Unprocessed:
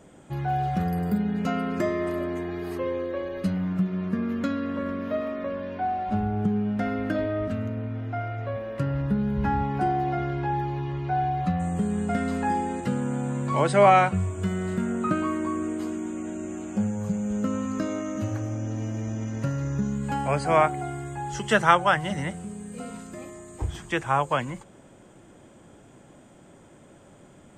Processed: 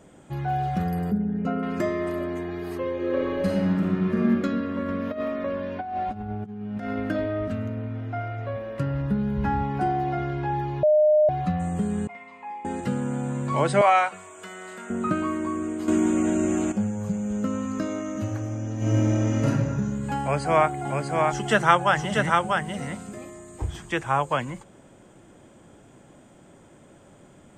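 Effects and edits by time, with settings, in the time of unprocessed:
1.11–1.63 s: resonances exaggerated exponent 1.5
2.94–4.29 s: reverb throw, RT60 2.2 s, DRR -4.5 dB
4.88–7.00 s: compressor with a negative ratio -29 dBFS, ratio -0.5
10.83–11.29 s: bleep 609 Hz -14.5 dBFS
12.07–12.65 s: two resonant band-passes 1.5 kHz, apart 1.1 oct
13.81–14.90 s: high-pass 660 Hz
15.88–16.72 s: gain +10.5 dB
18.77–19.46 s: reverb throw, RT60 1.4 s, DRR -9 dB
20.21–23.18 s: delay 641 ms -3.5 dB

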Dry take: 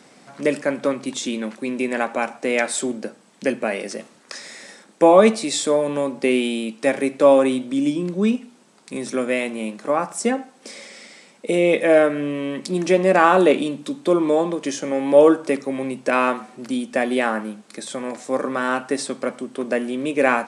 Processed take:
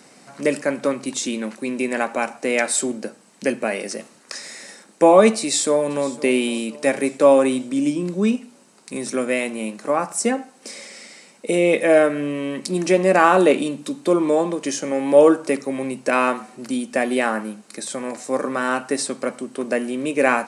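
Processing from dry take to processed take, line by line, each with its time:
5.39–6.24 s: echo throw 510 ms, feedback 55%, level -18 dB
whole clip: treble shelf 6.9 kHz +8 dB; band-stop 3.4 kHz, Q 11

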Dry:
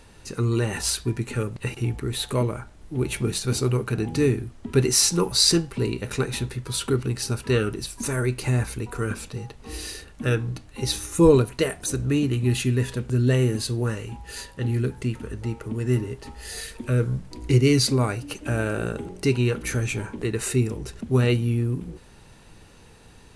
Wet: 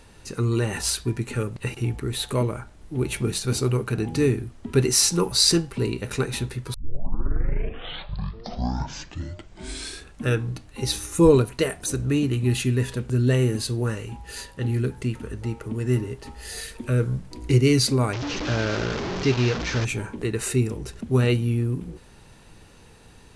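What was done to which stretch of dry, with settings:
6.74 s: tape start 3.53 s
18.13–19.85 s: one-bit delta coder 32 kbps, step -22.5 dBFS

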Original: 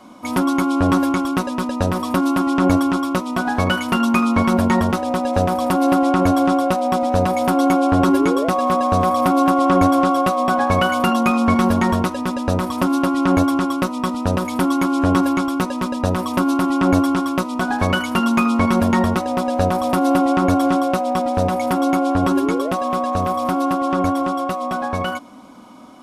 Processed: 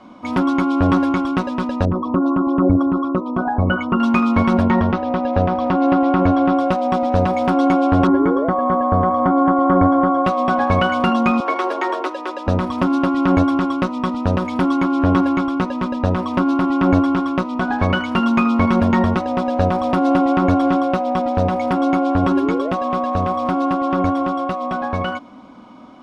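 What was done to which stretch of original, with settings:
1.85–4.00 s: resonances exaggerated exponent 2
4.63–6.58 s: Gaussian low-pass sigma 1.7 samples
8.07–10.25 s: Savitzky-Golay filter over 41 samples
11.40–12.47 s: steep high-pass 290 Hz 96 dB/octave
14.81–18.09 s: treble shelf 5 kHz -4 dB
20.36–21.18 s: careless resampling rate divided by 2×, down none, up hold
whole clip: low-pass 3.8 kHz 12 dB/octave; bass shelf 170 Hz +3 dB

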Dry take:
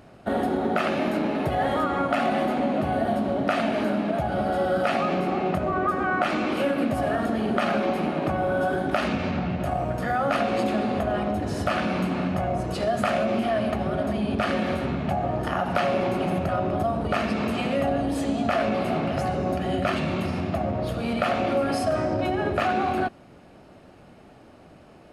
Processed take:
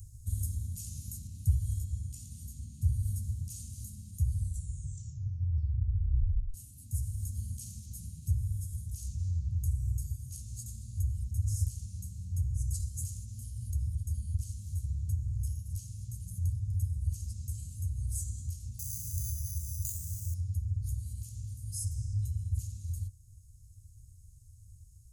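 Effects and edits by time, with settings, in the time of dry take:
1.27–3.03 s: treble shelf 6.7 kHz -6 dB
4.28 s: tape stop 2.26 s
18.79–20.34 s: careless resampling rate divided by 8×, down filtered, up hold
whole clip: Chebyshev band-stop 100–6700 Hz, order 4; gain riding 2 s; trim +3 dB

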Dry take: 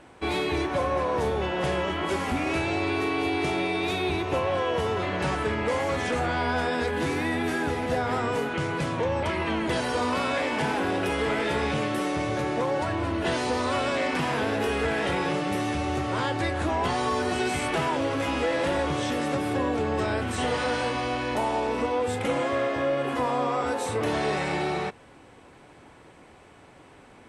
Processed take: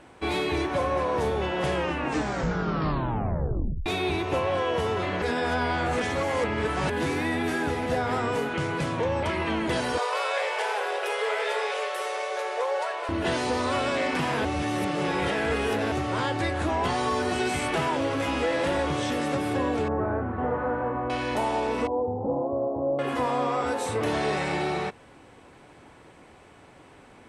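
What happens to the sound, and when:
1.73 s: tape stop 2.13 s
5.22–6.90 s: reverse
9.98–13.09 s: steep high-pass 400 Hz 96 dB/octave
14.45–15.92 s: reverse
19.88–21.10 s: low-pass 1.4 kHz 24 dB/octave
21.87–22.99 s: elliptic low-pass 920 Hz, stop band 50 dB

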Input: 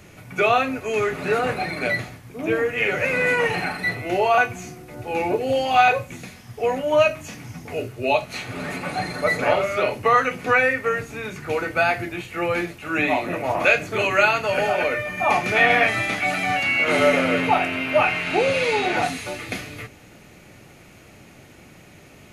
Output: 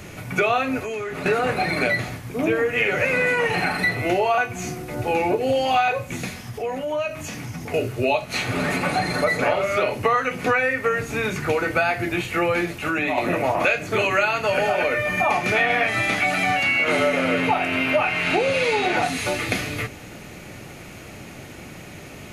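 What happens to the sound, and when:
0.80–1.26 s: compression 8:1, threshold -34 dBFS
6.37–7.74 s: compression 2.5:1, threshold -38 dBFS
12.75–13.18 s: compression, threshold -26 dBFS
whole clip: compression 4:1, threshold -27 dBFS; trim +8 dB

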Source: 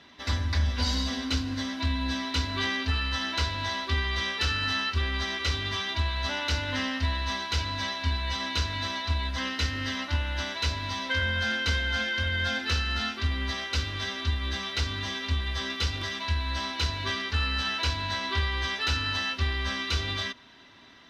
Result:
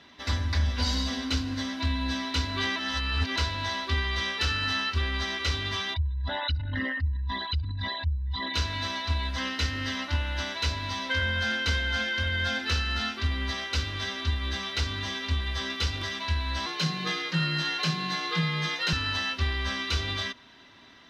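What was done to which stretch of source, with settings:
2.76–3.36 s: reverse
5.94–8.54 s: resonances exaggerated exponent 3
16.66–18.93 s: frequency shift +86 Hz

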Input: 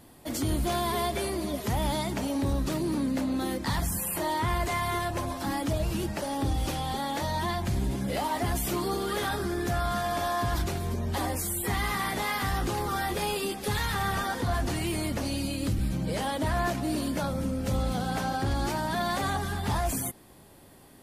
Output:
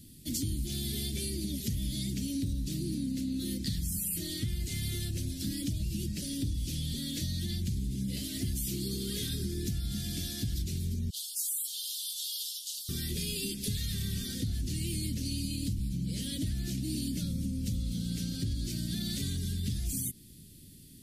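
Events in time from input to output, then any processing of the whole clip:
11.10–12.89 s: steep high-pass 3 kHz 72 dB/octave
whole clip: Chebyshev band-stop 200–4100 Hz, order 2; compression, threshold -34 dBFS; trim +4 dB

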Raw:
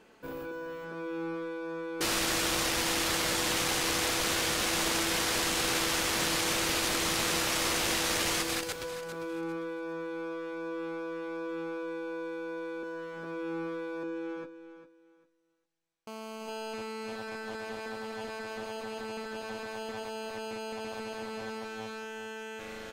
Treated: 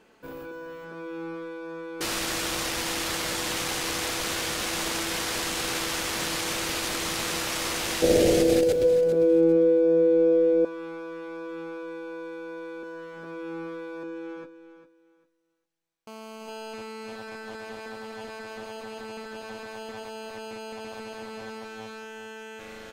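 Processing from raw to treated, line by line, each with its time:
8.02–10.65 s: resonant low shelf 730 Hz +12 dB, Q 3

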